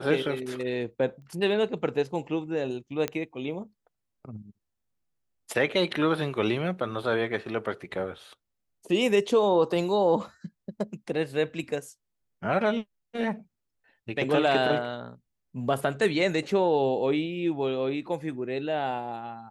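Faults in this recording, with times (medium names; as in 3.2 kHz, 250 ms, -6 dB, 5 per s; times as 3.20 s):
1.22 s: pop -42 dBFS
3.08 s: pop -14 dBFS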